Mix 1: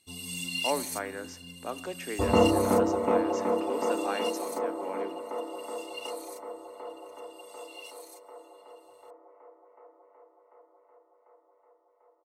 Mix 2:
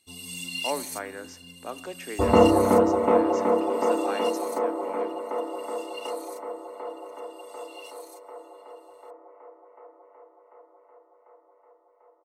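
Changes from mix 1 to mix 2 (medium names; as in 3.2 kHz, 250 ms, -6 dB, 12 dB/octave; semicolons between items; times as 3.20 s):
second sound +5.5 dB; master: add peaking EQ 120 Hz -3.5 dB 1.6 oct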